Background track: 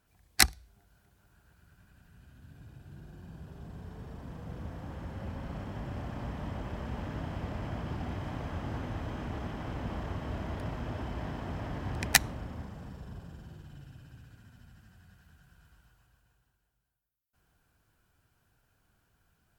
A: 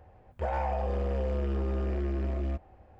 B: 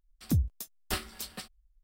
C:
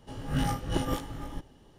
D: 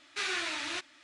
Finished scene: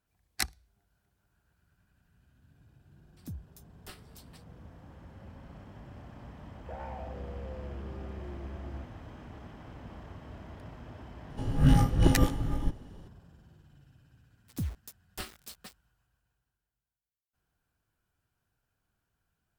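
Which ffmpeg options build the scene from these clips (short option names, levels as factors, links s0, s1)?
-filter_complex "[2:a]asplit=2[s0][s1];[0:a]volume=0.335[s2];[3:a]lowshelf=f=320:g=11[s3];[s1]acrusher=bits=6:mix=0:aa=0.000001[s4];[s0]atrim=end=1.83,asetpts=PTS-STARTPTS,volume=0.168,afade=t=in:d=0.004:c=hsin,afade=t=out:st=1.826:d=0.004:c=hsin,adelay=2960[s5];[1:a]atrim=end=2.99,asetpts=PTS-STARTPTS,volume=0.266,afade=t=in:d=0.004:c=hsin,afade=t=out:st=2.986:d=0.004:c=hsin,adelay=6270[s6];[s3]atrim=end=1.78,asetpts=PTS-STARTPTS,volume=0.891,afade=t=in:d=0.004:c=hsin,afade=t=out:st=1.776:d=0.004:c=hsin,adelay=498330S[s7];[s4]atrim=end=1.83,asetpts=PTS-STARTPTS,volume=0.422,afade=t=in:d=0.004:c=hsin,afade=t=out:st=1.826:d=0.004:c=hsin,adelay=14270[s8];[s2][s5][s6][s7][s8]amix=inputs=5:normalize=0"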